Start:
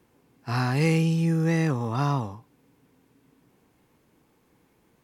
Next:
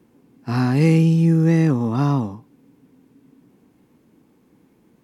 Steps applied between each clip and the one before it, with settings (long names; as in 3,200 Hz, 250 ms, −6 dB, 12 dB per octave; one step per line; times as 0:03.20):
parametric band 240 Hz +11.5 dB 1.6 octaves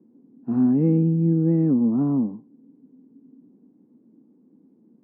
four-pole ladder band-pass 270 Hz, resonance 50%
level +8.5 dB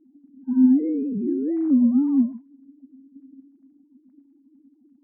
three sine waves on the formant tracks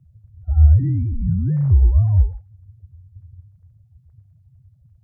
frequency shifter −180 Hz
level +5 dB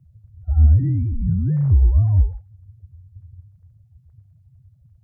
soft clipping −4.5 dBFS, distortion −22 dB